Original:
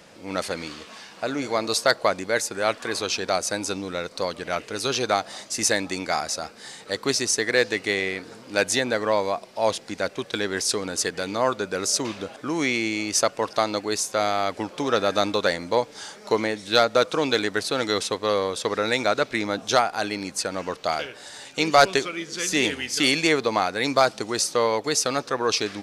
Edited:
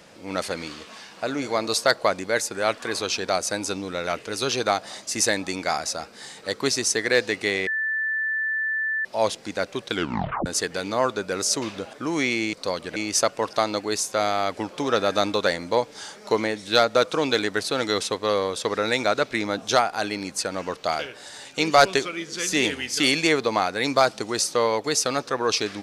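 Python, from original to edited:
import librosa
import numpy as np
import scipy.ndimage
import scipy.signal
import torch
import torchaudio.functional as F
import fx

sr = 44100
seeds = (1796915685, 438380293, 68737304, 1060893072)

y = fx.edit(x, sr, fx.move(start_s=4.07, length_s=0.43, to_s=12.96),
    fx.bleep(start_s=8.1, length_s=1.38, hz=1760.0, db=-22.5),
    fx.tape_stop(start_s=10.36, length_s=0.53), tone=tone)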